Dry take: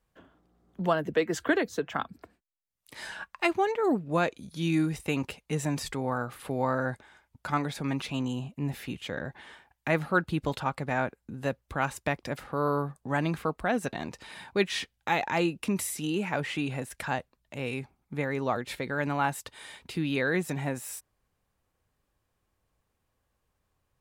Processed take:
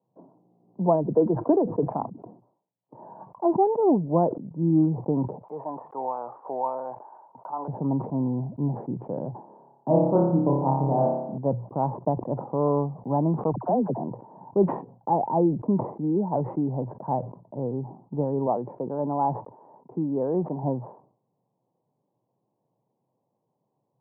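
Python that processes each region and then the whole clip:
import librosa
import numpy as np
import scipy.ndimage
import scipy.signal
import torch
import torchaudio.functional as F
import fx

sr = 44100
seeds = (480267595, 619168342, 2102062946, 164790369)

y = fx.chain(x, sr, fx.highpass(hz=1000.0, slope=12),
    fx.env_flatten(amount_pct=50), at=(5.43, 7.68))
y = fx.chain(y, sr, fx.high_shelf(hz=2000.0, db=-11.0),
    fx.room_flutter(wall_m=5.0, rt60_s=0.91), at=(9.41, 11.38))
y = fx.chain(y, sr, fx.delta_hold(step_db=-47.5),
    fx.dispersion(late='lows', ms=53.0, hz=710.0), at=(13.52, 14.02))
y = fx.chain(y, sr, fx.block_float(bits=7),
    fx.highpass(hz=250.0, slope=6), at=(18.46, 20.63))
y = scipy.signal.sosfilt(scipy.signal.cheby1(5, 1.0, [120.0, 970.0], 'bandpass', fs=sr, output='sos'), y)
y = fx.sustainer(y, sr, db_per_s=110.0)
y = y * 10.0 ** (6.0 / 20.0)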